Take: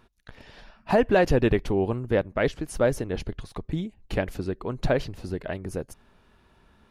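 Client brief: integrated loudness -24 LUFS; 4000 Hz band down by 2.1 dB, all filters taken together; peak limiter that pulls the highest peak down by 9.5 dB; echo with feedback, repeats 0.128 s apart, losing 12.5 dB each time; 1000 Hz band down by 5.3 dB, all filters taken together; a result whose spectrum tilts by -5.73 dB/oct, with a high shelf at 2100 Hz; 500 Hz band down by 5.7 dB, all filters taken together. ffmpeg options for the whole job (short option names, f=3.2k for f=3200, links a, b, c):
-af "equalizer=f=500:t=o:g=-6,equalizer=f=1k:t=o:g=-5.5,highshelf=f=2.1k:g=5,equalizer=f=4k:t=o:g=-7.5,alimiter=limit=-20.5dB:level=0:latency=1,aecho=1:1:128|256|384:0.237|0.0569|0.0137,volume=10dB"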